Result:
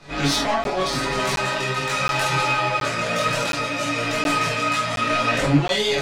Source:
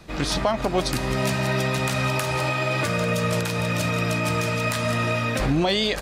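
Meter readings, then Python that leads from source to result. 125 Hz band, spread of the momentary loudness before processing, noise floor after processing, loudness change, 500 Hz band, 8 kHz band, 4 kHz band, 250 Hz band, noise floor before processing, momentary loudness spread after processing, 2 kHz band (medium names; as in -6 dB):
-3.5 dB, 2 LU, -27 dBFS, +2.0 dB, +0.5 dB, +2.5 dB, +3.5 dB, 0.0 dB, -29 dBFS, 4 LU, +3.5 dB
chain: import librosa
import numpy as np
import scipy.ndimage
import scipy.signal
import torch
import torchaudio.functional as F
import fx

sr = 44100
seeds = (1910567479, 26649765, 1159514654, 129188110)

p1 = scipy.signal.sosfilt(scipy.signal.butter(2, 7500.0, 'lowpass', fs=sr, output='sos'), x)
p2 = fx.doubler(p1, sr, ms=48.0, db=-4.5)
p3 = p2 + 10.0 ** (-21.5 / 20.0) * np.pad(p2, (int(413 * sr / 1000.0), 0))[:len(p2)]
p4 = fx.tremolo_shape(p3, sr, shape='triangle', hz=0.99, depth_pct=45)
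p5 = fx.fold_sine(p4, sr, drive_db=16, ceiling_db=-3.5)
p6 = p4 + (p5 * librosa.db_to_amplitude(-3.0))
p7 = fx.low_shelf(p6, sr, hz=170.0, db=-9.0)
p8 = fx.chorus_voices(p7, sr, voices=6, hz=0.78, base_ms=23, depth_ms=4.3, mix_pct=55)
p9 = fx.comb_fb(p8, sr, f0_hz=140.0, decay_s=0.18, harmonics='all', damping=0.0, mix_pct=90)
y = fx.buffer_crackle(p9, sr, first_s=0.64, period_s=0.72, block=512, kind='zero')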